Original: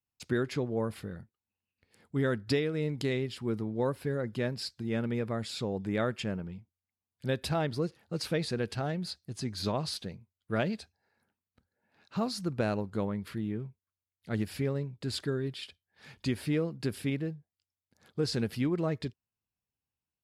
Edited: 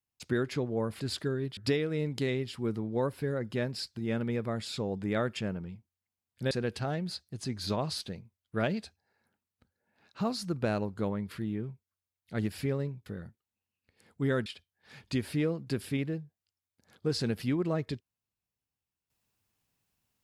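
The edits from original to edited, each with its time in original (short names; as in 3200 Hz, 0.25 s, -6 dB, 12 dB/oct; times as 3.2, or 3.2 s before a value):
1–2.4 swap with 15.02–15.59
7.34–8.47 cut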